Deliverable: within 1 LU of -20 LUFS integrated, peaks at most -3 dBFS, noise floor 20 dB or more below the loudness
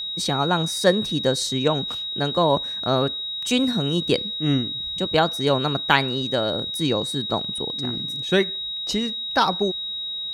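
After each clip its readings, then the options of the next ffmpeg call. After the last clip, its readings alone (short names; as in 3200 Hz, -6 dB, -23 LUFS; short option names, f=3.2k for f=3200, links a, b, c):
steady tone 3800 Hz; tone level -27 dBFS; loudness -22.5 LUFS; peak -2.0 dBFS; loudness target -20.0 LUFS
-> -af "bandreject=f=3.8k:w=30"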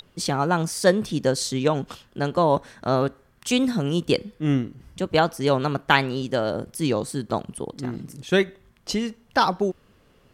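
steady tone none; loudness -24.0 LUFS; peak -2.0 dBFS; loudness target -20.0 LUFS
-> -af "volume=4dB,alimiter=limit=-3dB:level=0:latency=1"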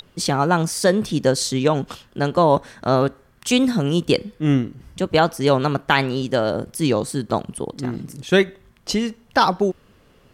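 loudness -20.5 LUFS; peak -3.0 dBFS; noise floor -55 dBFS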